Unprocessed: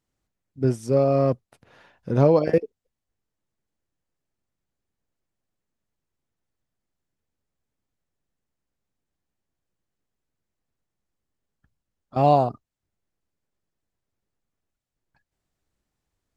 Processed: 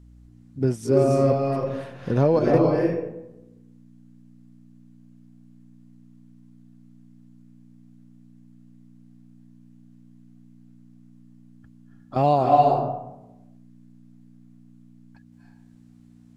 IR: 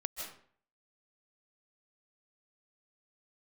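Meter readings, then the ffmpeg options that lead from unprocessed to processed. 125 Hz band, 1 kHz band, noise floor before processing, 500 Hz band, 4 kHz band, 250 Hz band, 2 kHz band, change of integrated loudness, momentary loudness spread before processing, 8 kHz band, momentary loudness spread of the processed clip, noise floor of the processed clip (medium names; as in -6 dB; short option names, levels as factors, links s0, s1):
+0.5 dB, +4.0 dB, -84 dBFS, +1.5 dB, +2.0 dB, +2.5 dB, +3.0 dB, 0.0 dB, 10 LU, no reading, 13 LU, -52 dBFS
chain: -filter_complex "[0:a]acompressor=threshold=0.00708:ratio=1.5,aeval=exprs='val(0)+0.00158*(sin(2*PI*60*n/s)+sin(2*PI*2*60*n/s)/2+sin(2*PI*3*60*n/s)/3+sin(2*PI*4*60*n/s)/4+sin(2*PI*5*60*n/s)/5)':c=same[s0];[1:a]atrim=start_sample=2205,asetrate=24255,aresample=44100[s1];[s0][s1]afir=irnorm=-1:irlink=0,volume=2.24"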